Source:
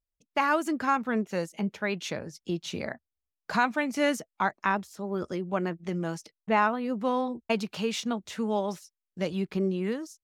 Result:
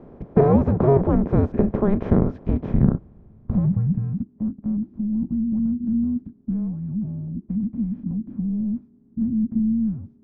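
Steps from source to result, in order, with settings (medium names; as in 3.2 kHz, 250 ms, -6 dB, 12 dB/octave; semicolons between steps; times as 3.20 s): spectral levelling over time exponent 0.4; low-pass sweep 760 Hz -> 160 Hz, 2.49–4.33 s; frequency shift -410 Hz; trim +3 dB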